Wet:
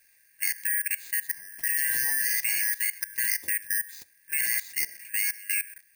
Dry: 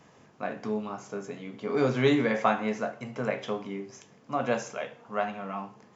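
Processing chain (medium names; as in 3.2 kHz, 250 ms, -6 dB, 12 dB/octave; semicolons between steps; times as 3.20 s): four frequency bands reordered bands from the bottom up 3142; level held to a coarse grid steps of 18 dB; careless resampling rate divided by 4×, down none, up zero stuff; trim +4 dB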